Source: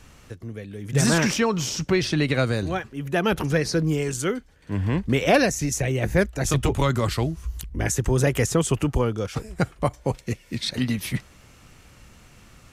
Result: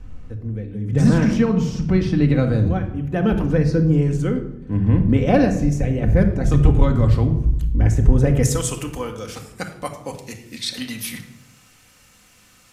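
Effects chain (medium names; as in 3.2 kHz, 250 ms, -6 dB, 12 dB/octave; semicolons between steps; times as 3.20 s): tilt EQ -3.5 dB/octave, from 8.42 s +2.5 dB/octave; simulated room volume 2200 m³, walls furnished, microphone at 2 m; trim -4 dB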